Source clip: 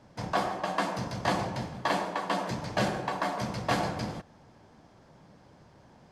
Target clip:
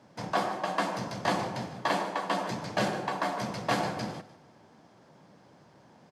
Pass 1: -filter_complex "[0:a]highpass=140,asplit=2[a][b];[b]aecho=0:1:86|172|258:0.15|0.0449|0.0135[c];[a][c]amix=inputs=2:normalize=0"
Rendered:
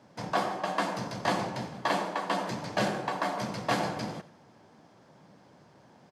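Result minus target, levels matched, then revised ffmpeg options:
echo 64 ms early
-filter_complex "[0:a]highpass=140,asplit=2[a][b];[b]aecho=0:1:150|300|450:0.15|0.0449|0.0135[c];[a][c]amix=inputs=2:normalize=0"

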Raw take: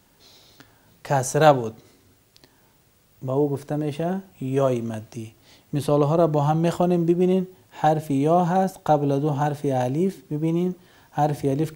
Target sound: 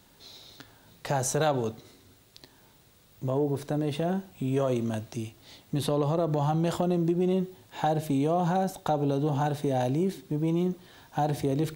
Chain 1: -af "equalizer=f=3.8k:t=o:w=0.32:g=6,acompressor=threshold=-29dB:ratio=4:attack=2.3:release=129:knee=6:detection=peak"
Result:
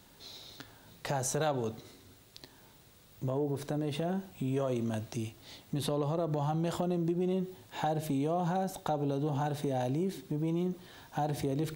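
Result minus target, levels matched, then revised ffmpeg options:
compressor: peak gain reduction +5.5 dB
-af "equalizer=f=3.8k:t=o:w=0.32:g=6,acompressor=threshold=-21.5dB:ratio=4:attack=2.3:release=129:knee=6:detection=peak"

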